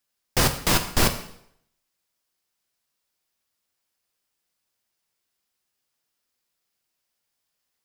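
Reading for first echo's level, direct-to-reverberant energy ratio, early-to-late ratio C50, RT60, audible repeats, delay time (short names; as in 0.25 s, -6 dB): none, 6.0 dB, 10.5 dB, 0.70 s, none, none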